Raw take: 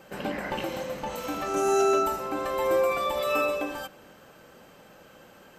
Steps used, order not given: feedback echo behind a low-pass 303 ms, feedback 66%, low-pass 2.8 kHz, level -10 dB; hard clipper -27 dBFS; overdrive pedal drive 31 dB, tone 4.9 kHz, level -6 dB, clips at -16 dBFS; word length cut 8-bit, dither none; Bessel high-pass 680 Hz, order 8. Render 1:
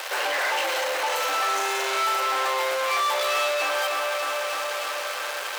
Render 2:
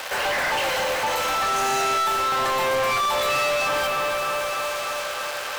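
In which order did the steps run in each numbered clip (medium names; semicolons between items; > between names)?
hard clipper > feedback echo behind a low-pass > word length cut > overdrive pedal > Bessel high-pass; feedback echo behind a low-pass > word length cut > Bessel high-pass > hard clipper > overdrive pedal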